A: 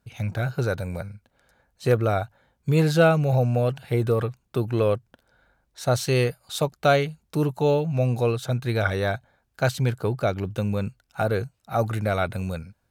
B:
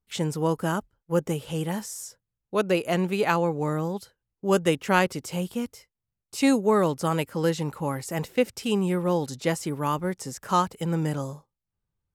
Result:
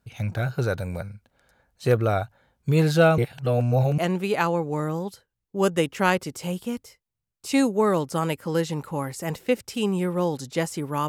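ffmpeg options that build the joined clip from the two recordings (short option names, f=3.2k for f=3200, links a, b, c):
-filter_complex "[0:a]apad=whole_dur=11.08,atrim=end=11.08,asplit=2[a][b];[a]atrim=end=3.182[c];[b]atrim=start=3.178:end=3.982,asetpts=PTS-STARTPTS,areverse[d];[1:a]atrim=start=2.868:end=9.97[e];[c][d]acrossfade=d=0.004:c1=hsin:c2=hsin[f];[f][e]acrossfade=d=0.004:c1=hsin:c2=hsin"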